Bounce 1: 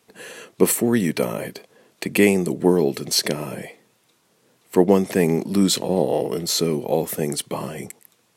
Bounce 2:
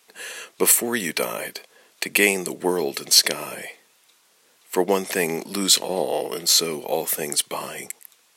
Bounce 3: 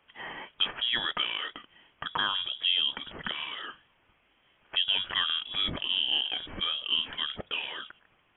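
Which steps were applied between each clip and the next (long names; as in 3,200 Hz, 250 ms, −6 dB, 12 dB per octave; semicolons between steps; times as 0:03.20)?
high-pass filter 1,400 Hz 6 dB per octave; level +6 dB
brickwall limiter −12 dBFS, peak gain reduction 10.5 dB; voice inversion scrambler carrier 3,600 Hz; level −3.5 dB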